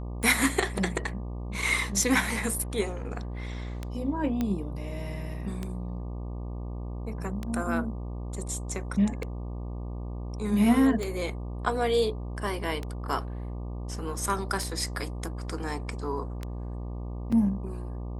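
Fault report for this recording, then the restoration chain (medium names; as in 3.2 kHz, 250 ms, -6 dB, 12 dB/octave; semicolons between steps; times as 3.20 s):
buzz 60 Hz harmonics 20 -35 dBFS
tick 33 1/3 rpm -19 dBFS
4.41 s: pop -16 dBFS
17.32 s: dropout 4.7 ms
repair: de-click; de-hum 60 Hz, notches 20; interpolate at 17.32 s, 4.7 ms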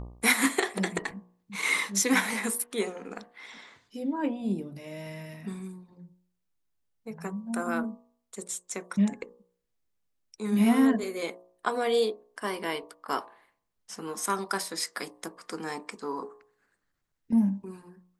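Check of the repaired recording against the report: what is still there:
nothing left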